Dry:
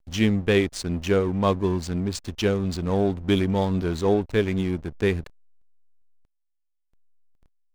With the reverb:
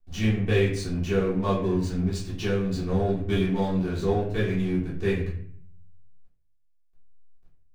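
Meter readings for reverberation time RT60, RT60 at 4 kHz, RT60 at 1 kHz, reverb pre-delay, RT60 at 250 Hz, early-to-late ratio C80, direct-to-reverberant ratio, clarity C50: 0.55 s, 0.40 s, 0.50 s, 3 ms, 0.85 s, 8.5 dB, -9.0 dB, 5.0 dB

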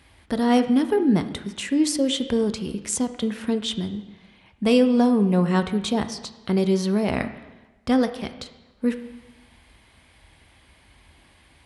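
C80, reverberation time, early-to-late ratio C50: 13.5 dB, 1.1 s, 11.5 dB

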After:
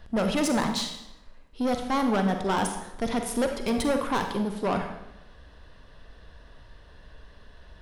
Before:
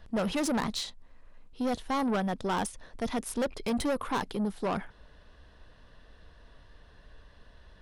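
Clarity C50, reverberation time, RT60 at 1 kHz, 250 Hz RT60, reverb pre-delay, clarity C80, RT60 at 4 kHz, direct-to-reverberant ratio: 6.5 dB, 0.90 s, 0.90 s, 0.90 s, 36 ms, 9.0 dB, 0.75 s, 5.0 dB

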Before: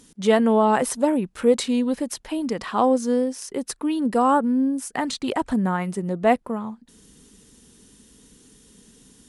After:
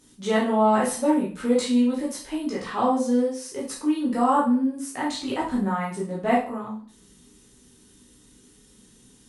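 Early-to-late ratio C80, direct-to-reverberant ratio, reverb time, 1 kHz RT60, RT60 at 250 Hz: 11.0 dB, -6.5 dB, 0.45 s, 0.40 s, 0.45 s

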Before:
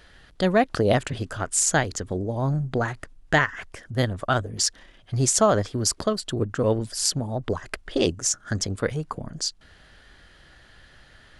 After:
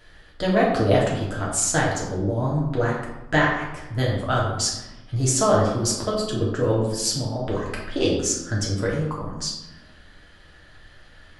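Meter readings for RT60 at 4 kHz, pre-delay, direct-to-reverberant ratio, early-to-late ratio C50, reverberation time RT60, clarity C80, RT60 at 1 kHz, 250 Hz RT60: 0.60 s, 3 ms, -4.5 dB, 2.5 dB, 1.0 s, 5.5 dB, 1.1 s, 1.4 s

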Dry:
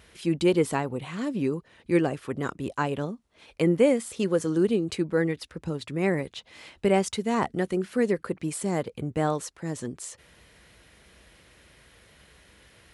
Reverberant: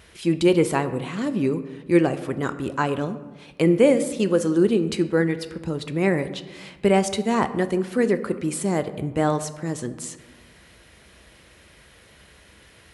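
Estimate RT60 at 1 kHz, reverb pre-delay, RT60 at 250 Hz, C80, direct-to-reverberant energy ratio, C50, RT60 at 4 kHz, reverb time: 1.2 s, 3 ms, 1.7 s, 15.0 dB, 10.5 dB, 13.5 dB, 0.70 s, 1.3 s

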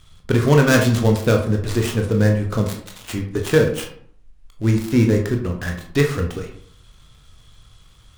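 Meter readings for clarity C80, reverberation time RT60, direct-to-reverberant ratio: 11.5 dB, 0.60 s, 2.0 dB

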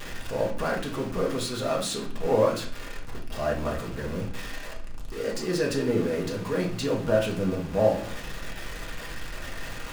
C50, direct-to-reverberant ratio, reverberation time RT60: 8.0 dB, -3.0 dB, 0.50 s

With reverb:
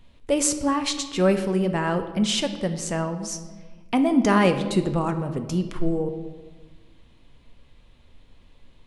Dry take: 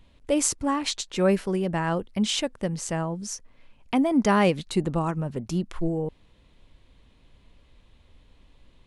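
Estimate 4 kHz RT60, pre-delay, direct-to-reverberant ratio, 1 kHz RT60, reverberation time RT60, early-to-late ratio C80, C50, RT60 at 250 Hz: 1.0 s, 4 ms, 7.0 dB, 1.2 s, 1.3 s, 12.0 dB, 10.5 dB, 1.7 s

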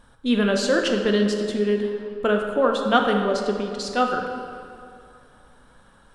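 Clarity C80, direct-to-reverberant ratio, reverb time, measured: 5.0 dB, 2.0 dB, 2.4 s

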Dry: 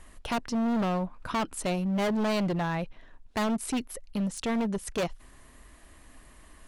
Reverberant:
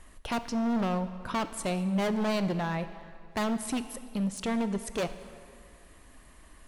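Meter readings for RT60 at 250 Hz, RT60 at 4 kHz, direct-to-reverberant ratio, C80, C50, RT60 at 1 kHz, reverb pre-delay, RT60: 2.1 s, 1.8 s, 11.0 dB, 13.0 dB, 12.0 dB, 2.3 s, 17 ms, 2.2 s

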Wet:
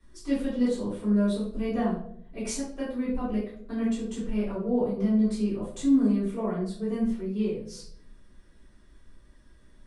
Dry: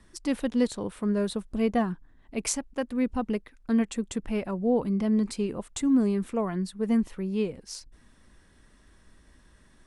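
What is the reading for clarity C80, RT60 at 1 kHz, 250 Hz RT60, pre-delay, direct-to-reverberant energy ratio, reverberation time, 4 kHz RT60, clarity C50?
7.0 dB, 0.50 s, 0.85 s, 3 ms, -10.5 dB, 0.65 s, 0.40 s, 3.5 dB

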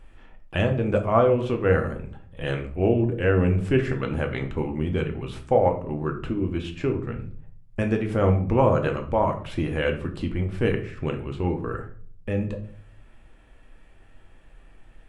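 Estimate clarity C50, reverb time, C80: 11.0 dB, 0.50 s, 15.0 dB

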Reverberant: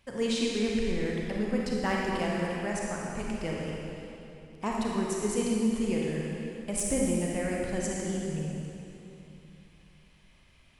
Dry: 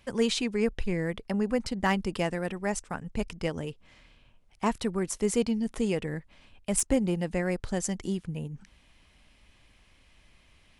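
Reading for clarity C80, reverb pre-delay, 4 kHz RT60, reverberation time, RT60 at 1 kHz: 0.0 dB, 32 ms, 2.4 s, 2.9 s, 2.9 s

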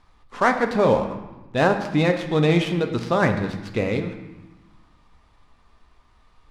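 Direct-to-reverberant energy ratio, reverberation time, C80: 5.5 dB, 1.1 s, 10.5 dB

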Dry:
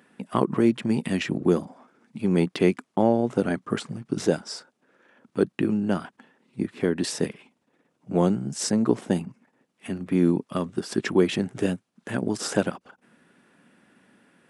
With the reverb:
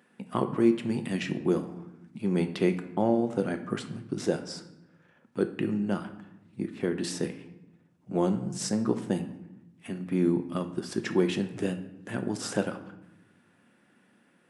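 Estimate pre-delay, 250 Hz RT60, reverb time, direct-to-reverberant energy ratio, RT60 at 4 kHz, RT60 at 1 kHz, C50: 6 ms, 1.3 s, 0.90 s, 7.0 dB, 0.65 s, 0.85 s, 11.5 dB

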